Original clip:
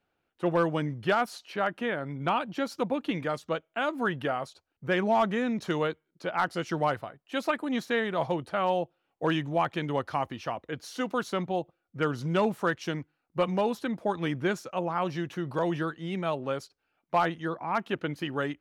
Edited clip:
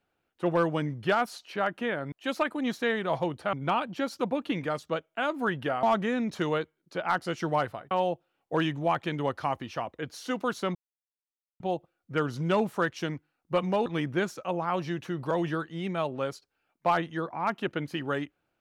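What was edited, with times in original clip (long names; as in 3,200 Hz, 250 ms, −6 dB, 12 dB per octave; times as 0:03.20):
0:04.42–0:05.12: remove
0:07.20–0:08.61: move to 0:02.12
0:11.45: splice in silence 0.85 s
0:13.71–0:14.14: remove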